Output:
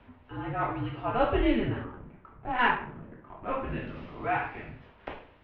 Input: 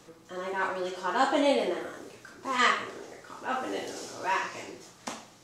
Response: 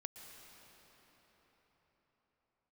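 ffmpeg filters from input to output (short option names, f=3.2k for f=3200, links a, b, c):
-filter_complex "[0:a]asettb=1/sr,asplit=3[a][b][c];[a]atrim=end=1.844[d];[b]atrim=start=1.84:end=3.53,asetpts=PTS-STARTPTS,afade=t=in:d=0.004:c=qsin,afade=t=out:st=1.686:d=0.004:c=qsin,adynamicsmooth=sensitivity=4:basefreq=1.5k[e];[c]atrim=start=3.526[f];[d][e]acrossfade=d=0.004:c1=hsin:c2=qsin[g];[g][f]acrossfade=d=0.004:c1=qsin:c2=hsin,highpass=f=150:t=q:w=0.5412,highpass=f=150:t=q:w=1.307,lowpass=f=3.1k:t=q:w=0.5176,lowpass=f=3.1k:t=q:w=0.7071,lowpass=f=3.1k:t=q:w=1.932,afreqshift=-240"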